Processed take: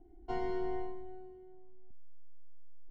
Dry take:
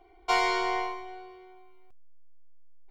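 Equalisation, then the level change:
moving average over 37 samples
low shelf with overshoot 360 Hz +8.5 dB, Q 3
−3.5 dB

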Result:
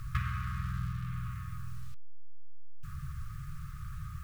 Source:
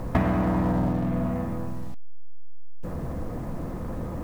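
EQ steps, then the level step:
linear-phase brick-wall band-stop 160–1,100 Hz
low-shelf EQ 130 Hz −4 dB
parametric band 1,900 Hz −5.5 dB 0.34 octaves
−3.0 dB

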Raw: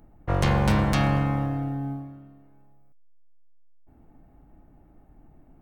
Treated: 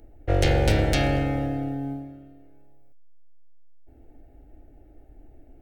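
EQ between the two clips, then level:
high-shelf EQ 6,800 Hz −4.5 dB
phaser with its sweep stopped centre 440 Hz, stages 4
+6.0 dB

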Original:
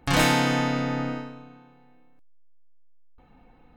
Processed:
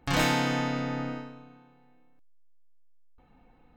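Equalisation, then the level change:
parametric band 10,000 Hz −8.5 dB 0.28 octaves
−4.5 dB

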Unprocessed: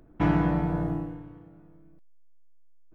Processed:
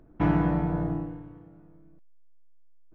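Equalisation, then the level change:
high-shelf EQ 3,400 Hz −9 dB
0.0 dB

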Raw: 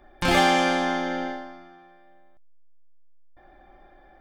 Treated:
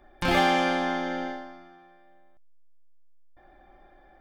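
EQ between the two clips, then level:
dynamic equaliser 8,000 Hz, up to −7 dB, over −45 dBFS, Q 0.93
−2.5 dB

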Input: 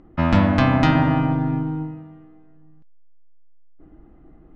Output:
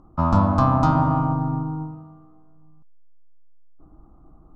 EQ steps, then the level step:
drawn EQ curve 120 Hz 0 dB, 420 Hz −7 dB, 1,200 Hz +6 dB, 1,900 Hz −24 dB, 3,000 Hz −17 dB, 4,500 Hz −7 dB, 7,000 Hz −1 dB
0.0 dB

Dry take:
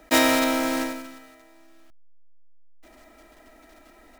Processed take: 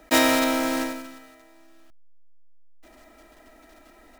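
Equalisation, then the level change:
notch filter 2,200 Hz, Q 21
0.0 dB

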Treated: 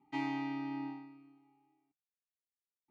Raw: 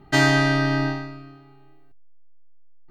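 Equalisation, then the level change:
formant filter u
low-shelf EQ 100 Hz −10.5 dB
parametric band 330 Hz −10.5 dB 0.51 octaves
−3.5 dB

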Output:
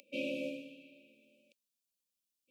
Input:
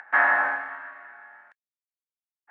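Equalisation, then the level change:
linear-phase brick-wall band-stop 580–2,300 Hz
phaser with its sweep stopped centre 400 Hz, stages 6
+8.5 dB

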